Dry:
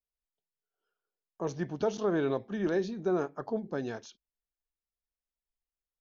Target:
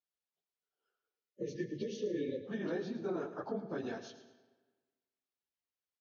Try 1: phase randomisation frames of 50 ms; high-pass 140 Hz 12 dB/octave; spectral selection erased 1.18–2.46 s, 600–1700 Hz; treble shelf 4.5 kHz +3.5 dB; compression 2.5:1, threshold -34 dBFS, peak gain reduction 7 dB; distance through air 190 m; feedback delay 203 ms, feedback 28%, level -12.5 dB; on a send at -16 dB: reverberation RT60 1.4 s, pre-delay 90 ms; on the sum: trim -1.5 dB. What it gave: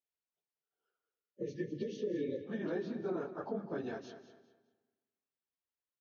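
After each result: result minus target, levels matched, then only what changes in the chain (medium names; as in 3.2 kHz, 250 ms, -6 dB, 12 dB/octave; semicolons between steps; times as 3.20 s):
echo 94 ms late; 8 kHz band -6.0 dB
change: feedback delay 109 ms, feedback 28%, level -12.5 dB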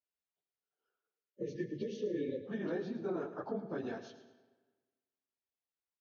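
8 kHz band -6.0 dB
change: treble shelf 4.5 kHz +13 dB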